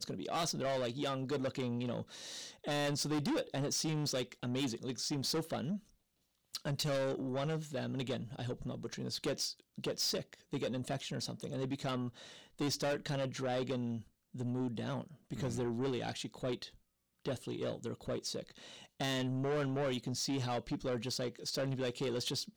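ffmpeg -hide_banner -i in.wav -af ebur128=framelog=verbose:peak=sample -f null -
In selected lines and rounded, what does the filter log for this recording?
Integrated loudness:
  I:         -37.8 LUFS
  Threshold: -47.9 LUFS
Loudness range:
  LRA:         3.5 LU
  Threshold: -58.2 LUFS
  LRA low:   -40.0 LUFS
  LRA high:  -36.5 LUFS
Sample peak:
  Peak:      -31.3 dBFS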